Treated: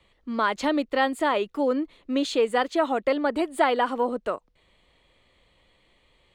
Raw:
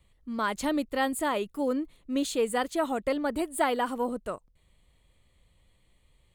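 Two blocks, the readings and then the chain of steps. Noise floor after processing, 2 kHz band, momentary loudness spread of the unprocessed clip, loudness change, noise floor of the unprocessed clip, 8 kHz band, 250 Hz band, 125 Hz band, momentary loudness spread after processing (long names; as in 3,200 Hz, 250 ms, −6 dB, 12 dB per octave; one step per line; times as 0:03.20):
−65 dBFS, +5.0 dB, 6 LU, +4.5 dB, −66 dBFS, −5.0 dB, +3.0 dB, can't be measured, 6 LU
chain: three-way crossover with the lows and the highs turned down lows −13 dB, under 250 Hz, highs −19 dB, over 5,500 Hz
in parallel at +1 dB: downward compressor, threshold −36 dBFS, peak gain reduction 14.5 dB
on the sum: level +3 dB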